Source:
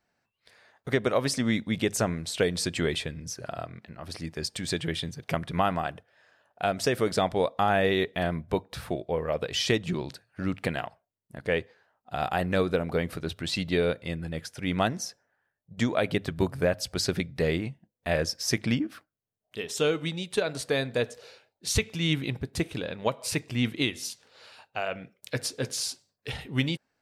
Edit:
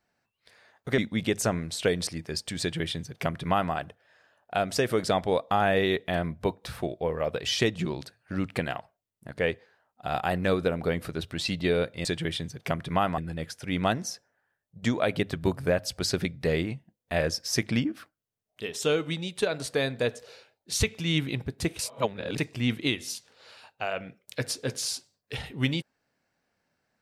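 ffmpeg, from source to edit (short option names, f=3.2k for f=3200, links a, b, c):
-filter_complex "[0:a]asplit=7[a][b][c][d][e][f][g];[a]atrim=end=0.982[h];[b]atrim=start=1.528:end=2.622[i];[c]atrim=start=4.148:end=14.132[j];[d]atrim=start=4.678:end=5.812[k];[e]atrim=start=14.128:end=22.742[l];[f]atrim=start=22.738:end=23.332,asetpts=PTS-STARTPTS,areverse[m];[g]atrim=start=23.328[n];[h][i]acrossfade=d=0.004:c1=hsin:c2=hsin[o];[o][j]acrossfade=d=0.004:c1=hsin:c2=hsin[p];[p][k]acrossfade=d=0.004:c1=hsin:c2=hsin[q];[q][l]acrossfade=d=0.004:c1=hsin:c2=hsin[r];[r][m]acrossfade=d=0.004:c1=hsin:c2=hsin[s];[s][n]acrossfade=d=0.004:c1=hsin:c2=hsin"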